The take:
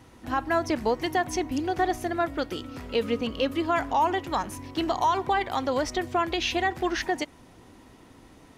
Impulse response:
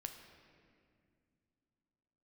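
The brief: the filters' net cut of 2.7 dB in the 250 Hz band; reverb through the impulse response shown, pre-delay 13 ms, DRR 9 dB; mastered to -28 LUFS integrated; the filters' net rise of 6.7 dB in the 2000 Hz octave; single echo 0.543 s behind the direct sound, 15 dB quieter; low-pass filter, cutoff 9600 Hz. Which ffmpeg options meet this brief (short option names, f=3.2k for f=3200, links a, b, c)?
-filter_complex "[0:a]lowpass=9.6k,equalizer=f=250:t=o:g=-4,equalizer=f=2k:t=o:g=8,aecho=1:1:543:0.178,asplit=2[a][b];[1:a]atrim=start_sample=2205,adelay=13[c];[b][c]afir=irnorm=-1:irlink=0,volume=-5.5dB[d];[a][d]amix=inputs=2:normalize=0,volume=-3dB"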